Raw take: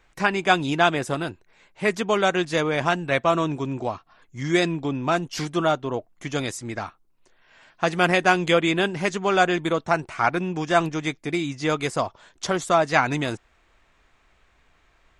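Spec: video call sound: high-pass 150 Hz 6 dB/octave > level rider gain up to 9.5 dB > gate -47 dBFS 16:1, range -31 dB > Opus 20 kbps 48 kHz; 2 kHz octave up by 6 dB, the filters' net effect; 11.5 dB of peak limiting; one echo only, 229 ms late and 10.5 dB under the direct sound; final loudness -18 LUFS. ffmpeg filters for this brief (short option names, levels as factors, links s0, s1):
-af "equalizer=f=2000:t=o:g=8,alimiter=limit=0.299:level=0:latency=1,highpass=f=150:p=1,aecho=1:1:229:0.299,dynaudnorm=m=2.99,agate=range=0.0282:threshold=0.00447:ratio=16,volume=2.11" -ar 48000 -c:a libopus -b:a 20k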